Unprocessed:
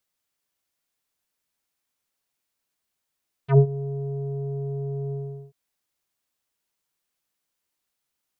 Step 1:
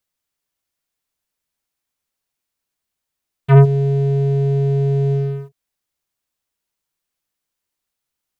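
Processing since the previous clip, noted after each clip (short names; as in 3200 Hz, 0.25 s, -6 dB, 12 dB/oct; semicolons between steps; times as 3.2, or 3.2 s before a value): low shelf 97 Hz +6.5 dB; sample leveller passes 2; gain +3.5 dB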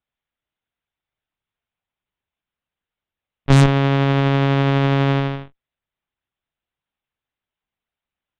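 half-waves squared off; LPC vocoder at 8 kHz pitch kept; added harmonics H 6 -10 dB, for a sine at 4 dBFS; gain -6 dB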